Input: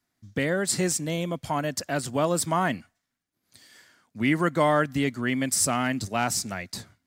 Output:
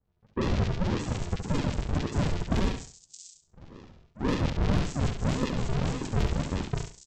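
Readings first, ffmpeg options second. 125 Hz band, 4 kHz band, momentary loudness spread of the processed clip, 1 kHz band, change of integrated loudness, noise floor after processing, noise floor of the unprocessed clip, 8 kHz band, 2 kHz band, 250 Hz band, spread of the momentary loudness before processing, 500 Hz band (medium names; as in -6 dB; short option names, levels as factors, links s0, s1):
+4.0 dB, -5.5 dB, 12 LU, -9.0 dB, -4.0 dB, -68 dBFS, -81 dBFS, -15.5 dB, -10.0 dB, -3.0 dB, 7 LU, -7.0 dB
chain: -filter_complex "[0:a]highpass=500,acompressor=threshold=0.0355:ratio=2,aresample=16000,acrusher=samples=41:mix=1:aa=0.000001:lfo=1:lforange=41:lforate=1.8,aresample=44100,acrossover=split=1800|5900[s0][s1][s2];[s1]adelay=40[s3];[s2]adelay=620[s4];[s0][s3][s4]amix=inputs=3:normalize=0,aeval=exprs='0.112*(cos(1*acos(clip(val(0)/0.112,-1,1)))-cos(1*PI/2))+0.0158*(cos(5*acos(clip(val(0)/0.112,-1,1)))-cos(5*PI/2))+0.00224*(cos(7*acos(clip(val(0)/0.112,-1,1)))-cos(7*PI/2))':c=same,asplit=2[s5][s6];[s6]aecho=0:1:69|138|207:0.447|0.107|0.0257[s7];[s5][s7]amix=inputs=2:normalize=0,volume=1.41"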